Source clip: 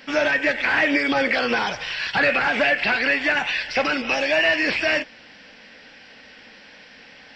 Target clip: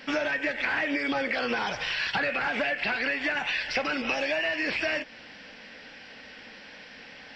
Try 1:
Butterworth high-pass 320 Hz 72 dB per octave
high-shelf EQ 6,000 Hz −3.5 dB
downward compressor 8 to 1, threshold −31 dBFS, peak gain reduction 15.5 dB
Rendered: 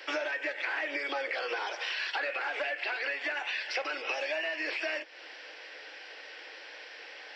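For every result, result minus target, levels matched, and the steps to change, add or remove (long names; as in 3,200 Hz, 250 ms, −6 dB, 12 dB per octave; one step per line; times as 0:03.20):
250 Hz band −9.0 dB; downward compressor: peak gain reduction +5.5 dB
remove: Butterworth high-pass 320 Hz 72 dB per octave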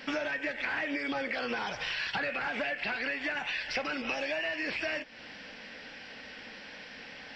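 downward compressor: peak gain reduction +5 dB
change: downward compressor 8 to 1, threshold −25 dBFS, peak gain reduction 10.5 dB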